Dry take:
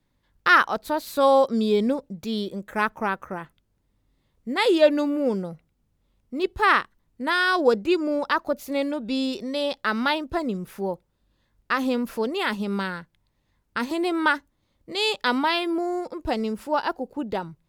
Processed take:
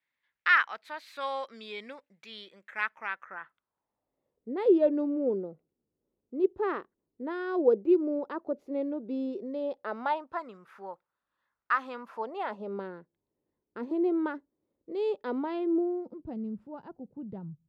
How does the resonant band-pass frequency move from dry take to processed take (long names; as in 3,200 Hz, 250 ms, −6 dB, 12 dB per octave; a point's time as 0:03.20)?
resonant band-pass, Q 2.5
0:03.13 2,100 Hz
0:04.51 390 Hz
0:09.64 390 Hz
0:10.44 1,300 Hz
0:11.90 1,300 Hz
0:12.96 390 Hz
0:15.69 390 Hz
0:16.39 150 Hz